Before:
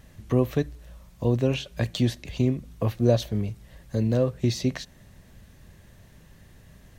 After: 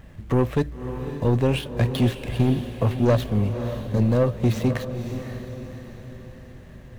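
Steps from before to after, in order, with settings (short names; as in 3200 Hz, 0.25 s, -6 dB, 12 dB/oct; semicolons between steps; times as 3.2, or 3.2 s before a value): median filter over 9 samples; soft clip -19 dBFS, distortion -11 dB; diffused feedback echo 0.553 s, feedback 47%, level -9 dB; gain +6 dB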